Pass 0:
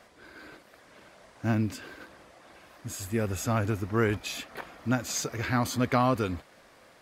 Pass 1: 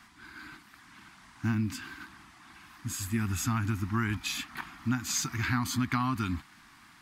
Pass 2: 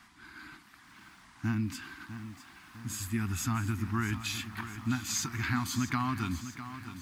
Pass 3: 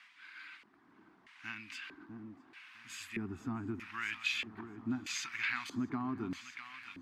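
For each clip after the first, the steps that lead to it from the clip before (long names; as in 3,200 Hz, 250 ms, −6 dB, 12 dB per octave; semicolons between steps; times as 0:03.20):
Chebyshev band-stop filter 270–1,000 Hz, order 2; downward compressor, threshold −28 dBFS, peak gain reduction 6.5 dB; level +3 dB
feedback echo at a low word length 653 ms, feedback 55%, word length 9 bits, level −11.5 dB; level −2 dB
auto-filter band-pass square 0.79 Hz 410–2,500 Hz; level +5.5 dB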